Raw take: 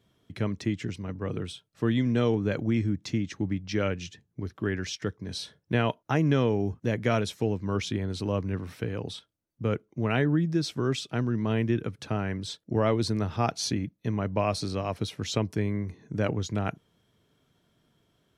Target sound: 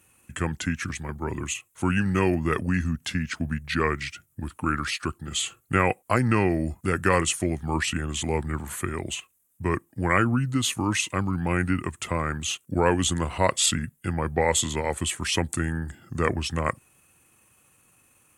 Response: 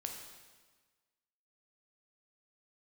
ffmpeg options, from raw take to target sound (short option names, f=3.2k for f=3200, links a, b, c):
-af "aexciter=amount=15.9:drive=5.6:freq=8.7k,equalizer=f=2.2k:t=o:w=2.9:g=10,asetrate=35002,aresample=44100,atempo=1.25992"